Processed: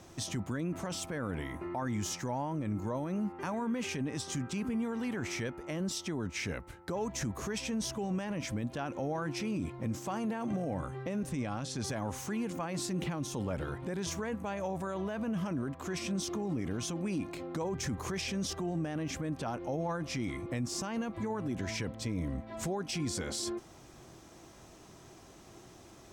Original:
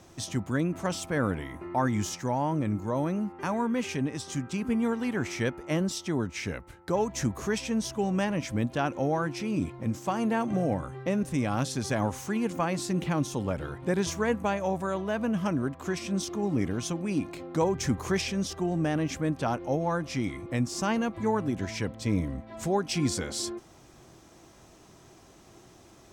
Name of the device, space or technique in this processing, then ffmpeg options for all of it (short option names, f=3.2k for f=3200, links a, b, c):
stacked limiters: -filter_complex "[0:a]alimiter=limit=-20dB:level=0:latency=1:release=326,alimiter=level_in=3dB:limit=-24dB:level=0:latency=1:release=19,volume=-3dB,asettb=1/sr,asplit=3[a][b][c];[a]atrim=end=11.314[d];[b]atrim=start=11.31:end=11.84,asetpts=PTS-STARTPTS,afade=t=in:d=0.004:c=qsin,afade=t=out:st=0.526:d=0.004:c=qsin,lowpass=8.3k[e];[c]atrim=start=11.836[f];[d][e]acrossfade=d=0.004:c1=hsin:c2=qsin[g];[g][f]acrossfade=d=0.004:c1=qsin:c2=hsin"